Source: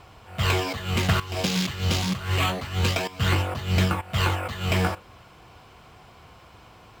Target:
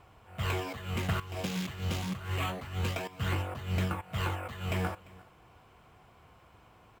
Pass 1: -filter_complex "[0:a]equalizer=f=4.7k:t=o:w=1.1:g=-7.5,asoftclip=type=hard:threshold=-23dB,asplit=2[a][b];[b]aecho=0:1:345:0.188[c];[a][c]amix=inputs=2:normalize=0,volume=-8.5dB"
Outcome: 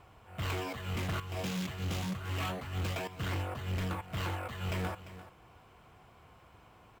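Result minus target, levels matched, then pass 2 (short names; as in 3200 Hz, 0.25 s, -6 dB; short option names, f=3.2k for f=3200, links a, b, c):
hard clip: distortion +18 dB; echo-to-direct +8 dB
-filter_complex "[0:a]equalizer=f=4.7k:t=o:w=1.1:g=-7.5,asoftclip=type=hard:threshold=-14.5dB,asplit=2[a][b];[b]aecho=0:1:345:0.075[c];[a][c]amix=inputs=2:normalize=0,volume=-8.5dB"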